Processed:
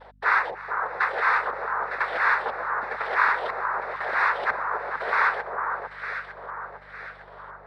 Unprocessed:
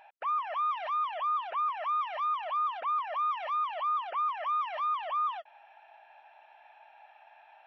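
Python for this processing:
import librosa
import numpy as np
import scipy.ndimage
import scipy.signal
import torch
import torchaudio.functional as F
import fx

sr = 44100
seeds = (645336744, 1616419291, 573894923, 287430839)

y = fx.rider(x, sr, range_db=10, speed_s=0.5)
y = fx.filter_lfo_lowpass(y, sr, shape='square', hz=1.0, low_hz=510.0, high_hz=1500.0, q=1.2)
y = fx.noise_vocoder(y, sr, seeds[0], bands=6)
y = fx.add_hum(y, sr, base_hz=50, snr_db=29)
y = fx.echo_alternate(y, sr, ms=453, hz=1400.0, feedback_pct=65, wet_db=-4.0)
y = F.gain(torch.from_numpy(y), 6.0).numpy()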